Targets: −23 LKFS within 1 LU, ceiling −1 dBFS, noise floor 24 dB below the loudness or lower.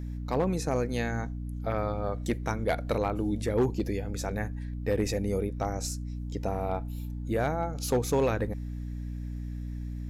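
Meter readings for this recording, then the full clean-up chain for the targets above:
share of clipped samples 0.4%; peaks flattened at −19.0 dBFS; mains hum 60 Hz; hum harmonics up to 300 Hz; level of the hum −33 dBFS; integrated loudness −31.0 LKFS; sample peak −19.0 dBFS; target loudness −23.0 LKFS
→ clipped peaks rebuilt −19 dBFS
hum removal 60 Hz, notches 5
level +8 dB

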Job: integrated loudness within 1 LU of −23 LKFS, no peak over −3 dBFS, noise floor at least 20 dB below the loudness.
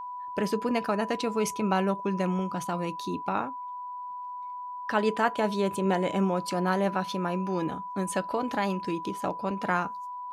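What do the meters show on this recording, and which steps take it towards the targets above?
interfering tone 990 Hz; level of the tone −35 dBFS; integrated loudness −29.5 LKFS; sample peak −11.0 dBFS; target loudness −23.0 LKFS
→ notch filter 990 Hz, Q 30
level +6.5 dB

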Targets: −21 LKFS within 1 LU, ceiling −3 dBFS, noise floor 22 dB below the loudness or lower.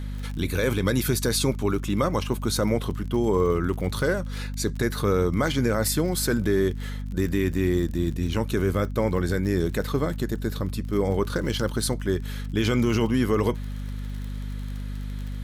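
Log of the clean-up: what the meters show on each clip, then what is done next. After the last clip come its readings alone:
crackle rate 42 per second; mains hum 50 Hz; hum harmonics up to 250 Hz; level of the hum −29 dBFS; integrated loudness −25.5 LKFS; sample peak −11.5 dBFS; target loudness −21.0 LKFS
→ click removal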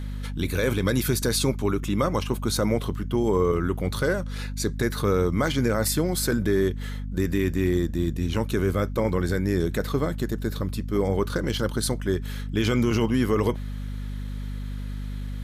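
crackle rate 0.13 per second; mains hum 50 Hz; hum harmonics up to 250 Hz; level of the hum −29 dBFS
→ hum removal 50 Hz, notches 5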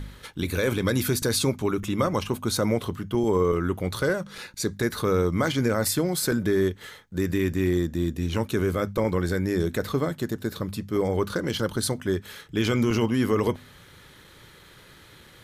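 mains hum none found; integrated loudness −26.0 LKFS; sample peak −12.0 dBFS; target loudness −21.0 LKFS
→ level +5 dB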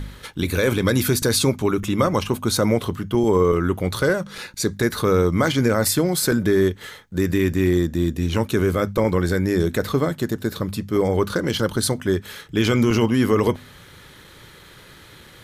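integrated loudness −21.0 LKFS; sample peak −7.0 dBFS; background noise floor −46 dBFS

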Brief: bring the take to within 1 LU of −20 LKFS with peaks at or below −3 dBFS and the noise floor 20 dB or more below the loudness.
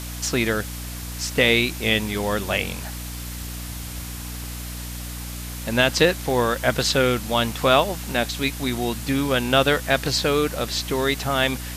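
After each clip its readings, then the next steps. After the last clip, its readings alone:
mains hum 60 Hz; hum harmonics up to 300 Hz; level of the hum −31 dBFS; background noise floor −33 dBFS; target noise floor −43 dBFS; integrated loudness −22.5 LKFS; sample peak −3.5 dBFS; target loudness −20.0 LKFS
→ mains-hum notches 60/120/180/240/300 Hz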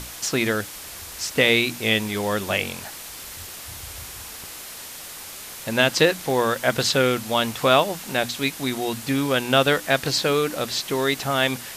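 mains hum none found; background noise floor −38 dBFS; target noise floor −42 dBFS
→ broadband denoise 6 dB, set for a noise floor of −38 dBFS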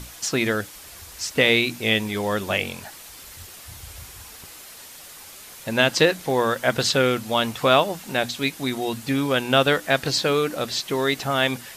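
background noise floor −43 dBFS; integrated loudness −22.0 LKFS; sample peak −3.0 dBFS; target loudness −20.0 LKFS
→ level +2 dB
brickwall limiter −3 dBFS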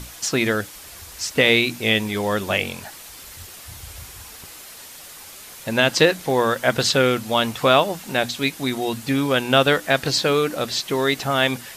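integrated loudness −20.0 LKFS; sample peak −3.0 dBFS; background noise floor −41 dBFS

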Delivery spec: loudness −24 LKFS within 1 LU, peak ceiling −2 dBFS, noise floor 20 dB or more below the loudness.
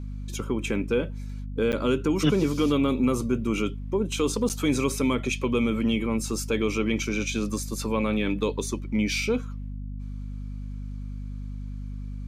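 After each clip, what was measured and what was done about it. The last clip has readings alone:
number of dropouts 2; longest dropout 8.7 ms; mains hum 50 Hz; hum harmonics up to 250 Hz; level of the hum −32 dBFS; integrated loudness −26.0 LKFS; sample peak −9.5 dBFS; target loudness −24.0 LKFS
→ repair the gap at 0:01.72/0:04.49, 8.7 ms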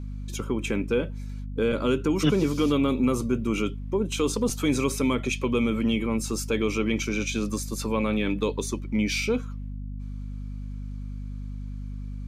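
number of dropouts 0; mains hum 50 Hz; hum harmonics up to 250 Hz; level of the hum −32 dBFS
→ mains-hum notches 50/100/150/200/250 Hz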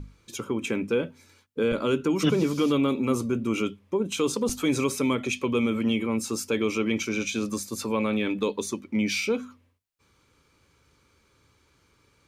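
mains hum none found; integrated loudness −26.5 LKFS; sample peak −9.5 dBFS; target loudness −24.0 LKFS
→ level +2.5 dB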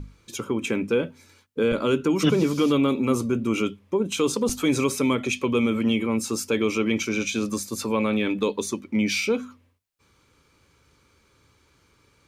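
integrated loudness −24.0 LKFS; sample peak −7.0 dBFS; background noise floor −63 dBFS

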